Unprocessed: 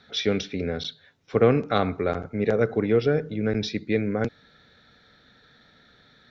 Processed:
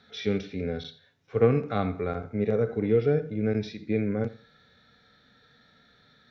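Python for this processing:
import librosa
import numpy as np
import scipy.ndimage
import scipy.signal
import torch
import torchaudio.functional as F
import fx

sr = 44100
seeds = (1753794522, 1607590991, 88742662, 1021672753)

y = fx.hpss(x, sr, part='percussive', gain_db=-16)
y = fx.echo_feedback(y, sr, ms=87, feedback_pct=26, wet_db=-19)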